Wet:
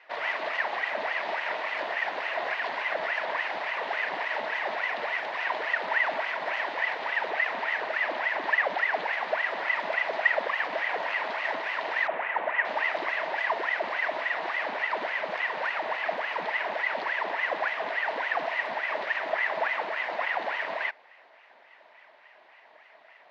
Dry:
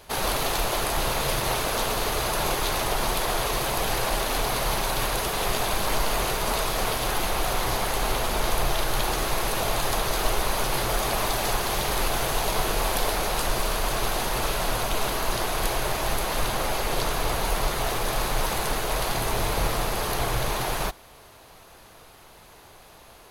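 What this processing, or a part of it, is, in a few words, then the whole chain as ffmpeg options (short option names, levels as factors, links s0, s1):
voice changer toy: -filter_complex "[0:a]aeval=exprs='val(0)*sin(2*PI*1100*n/s+1100*0.85/3.5*sin(2*PI*3.5*n/s))':c=same,highpass=580,equalizer=f=640:t=q:w=4:g=10,equalizer=f=930:t=q:w=4:g=5,equalizer=f=1300:t=q:w=4:g=-5,equalizer=f=1900:t=q:w=4:g=8,equalizer=f=3300:t=q:w=4:g=-3,lowpass=f=3500:w=0.5412,lowpass=f=3500:w=1.3066,asettb=1/sr,asplit=3[s0][s1][s2];[s0]atrim=end=12.074[s3];[s1]atrim=start=12.07:end=12.65,asetpts=PTS-STARTPTS,afade=t=in:d=0.004:c=qsin,afade=t=out:st=0.576:d=0.004:c=qsin,lowpass=f=2700:w=0.5412,lowpass=f=2700:w=1.3066[s4];[s2]atrim=start=12.646[s5];[s3][s4]acrossfade=d=0.004:c1=hsin:c2=qsin[s6];[s6][s5]acrossfade=d=0.004:c1=qsin:c2=hsin,volume=0.631"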